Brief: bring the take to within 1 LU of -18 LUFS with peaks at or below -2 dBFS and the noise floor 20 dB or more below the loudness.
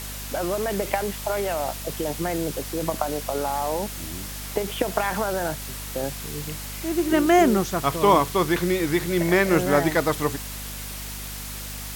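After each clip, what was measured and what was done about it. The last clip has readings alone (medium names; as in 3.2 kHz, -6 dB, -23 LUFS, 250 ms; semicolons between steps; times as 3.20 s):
hum 50 Hz; highest harmonic 250 Hz; hum level -35 dBFS; noise floor -34 dBFS; noise floor target -45 dBFS; loudness -24.5 LUFS; peak level -5.0 dBFS; loudness target -18.0 LUFS
-> de-hum 50 Hz, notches 5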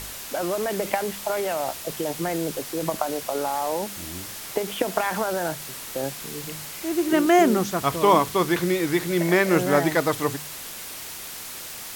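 hum not found; noise floor -37 dBFS; noise floor target -45 dBFS
-> noise print and reduce 8 dB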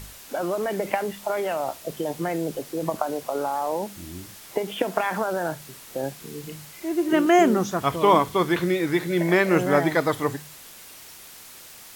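noise floor -45 dBFS; loudness -24.0 LUFS; peak level -5.5 dBFS; loudness target -18.0 LUFS
-> trim +6 dB; peak limiter -2 dBFS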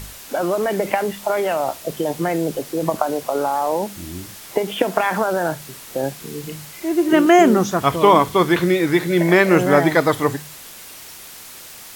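loudness -18.5 LUFS; peak level -2.0 dBFS; noise floor -39 dBFS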